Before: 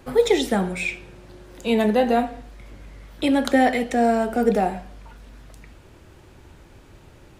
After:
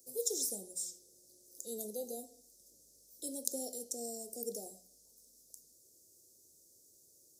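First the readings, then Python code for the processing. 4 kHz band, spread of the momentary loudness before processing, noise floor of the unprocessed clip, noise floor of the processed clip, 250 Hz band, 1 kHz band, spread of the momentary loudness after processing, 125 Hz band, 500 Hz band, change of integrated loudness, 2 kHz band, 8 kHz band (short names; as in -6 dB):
-16.0 dB, 10 LU, -49 dBFS, -65 dBFS, -27.5 dB, -34.0 dB, 21 LU, under -30 dB, -22.0 dB, -18.5 dB, under -40 dB, +2.0 dB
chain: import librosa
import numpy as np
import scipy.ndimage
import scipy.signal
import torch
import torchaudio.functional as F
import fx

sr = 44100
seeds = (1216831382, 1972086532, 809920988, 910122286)

y = scipy.signal.sosfilt(scipy.signal.ellip(3, 1.0, 50, [510.0, 5600.0], 'bandstop', fs=sr, output='sos'), x)
y = np.diff(y, prepend=0.0)
y = fx.hum_notches(y, sr, base_hz=60, count=3)
y = y * librosa.db_to_amplitude(2.5)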